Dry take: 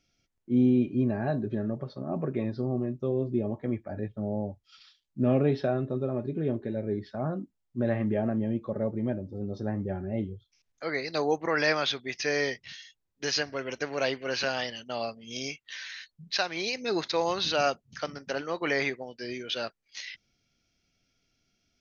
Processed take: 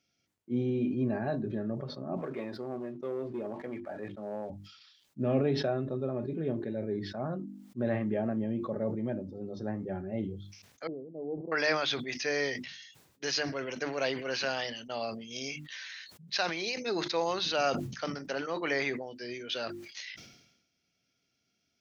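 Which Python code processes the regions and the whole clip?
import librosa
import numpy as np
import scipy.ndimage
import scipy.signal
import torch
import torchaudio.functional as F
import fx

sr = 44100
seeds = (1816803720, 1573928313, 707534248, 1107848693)

y = fx.chain(x, sr, fx.bandpass_q(hz=1300.0, q=0.53),
    fx.leveller(passes=1), at=(2.17, 4.5))
y = fx.chain(y, sr, fx.gaussian_blur(sigma=19.0),
    fx.peak_eq(hz=73.0, db=-11.5, octaves=1.4), at=(10.87, 11.52))
y = scipy.signal.sosfilt(scipy.signal.butter(2, 110.0, 'highpass', fs=sr, output='sos'), y)
y = fx.hum_notches(y, sr, base_hz=50, count=7)
y = fx.sustainer(y, sr, db_per_s=61.0)
y = y * librosa.db_to_amplitude(-3.0)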